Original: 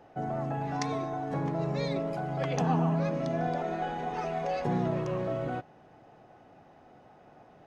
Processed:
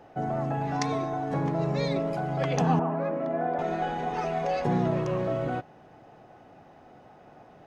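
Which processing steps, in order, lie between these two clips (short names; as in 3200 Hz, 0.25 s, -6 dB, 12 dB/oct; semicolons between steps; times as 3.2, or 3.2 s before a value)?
2.79–3.59 three-band isolator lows -23 dB, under 210 Hz, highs -23 dB, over 2100 Hz; gain +3.5 dB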